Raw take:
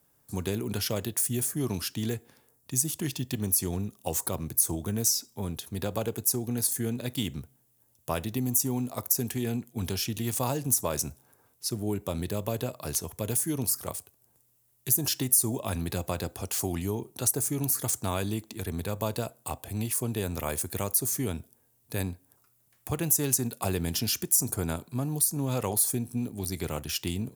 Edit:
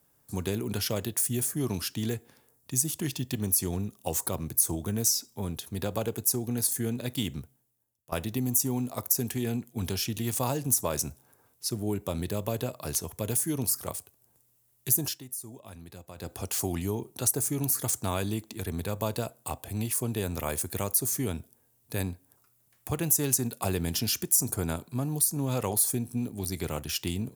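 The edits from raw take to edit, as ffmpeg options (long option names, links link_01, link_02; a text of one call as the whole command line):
ffmpeg -i in.wav -filter_complex "[0:a]asplit=4[link_01][link_02][link_03][link_04];[link_01]atrim=end=8.12,asetpts=PTS-STARTPTS,afade=type=out:start_time=7.39:duration=0.73:curve=qua:silence=0.105925[link_05];[link_02]atrim=start=8.12:end=15.2,asetpts=PTS-STARTPTS,afade=type=in:duration=0.004:curve=hsin:silence=0.105925,afade=type=out:start_time=6.87:duration=0.21:silence=0.177828[link_06];[link_03]atrim=start=15.2:end=16.15,asetpts=PTS-STARTPTS,volume=-15dB[link_07];[link_04]atrim=start=16.15,asetpts=PTS-STARTPTS,afade=type=in:duration=0.21:silence=0.177828[link_08];[link_05][link_06][link_07][link_08]concat=n=4:v=0:a=1" out.wav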